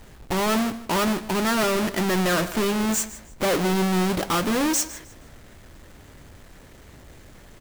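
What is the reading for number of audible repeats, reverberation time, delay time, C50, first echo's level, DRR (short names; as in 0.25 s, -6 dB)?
2, none, 0.154 s, none, -16.5 dB, none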